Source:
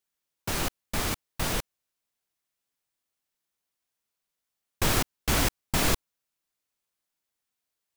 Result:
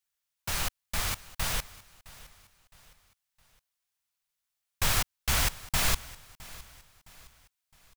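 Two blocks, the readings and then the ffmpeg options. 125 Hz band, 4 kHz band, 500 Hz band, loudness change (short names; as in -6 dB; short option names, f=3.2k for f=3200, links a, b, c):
-3.5 dB, 0.0 dB, -8.5 dB, -1.5 dB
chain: -filter_complex "[0:a]equalizer=f=310:t=o:w=1.7:g=-15,asplit=2[a][b];[b]aecho=0:1:663|1326|1989:0.106|0.0434|0.0178[c];[a][c]amix=inputs=2:normalize=0"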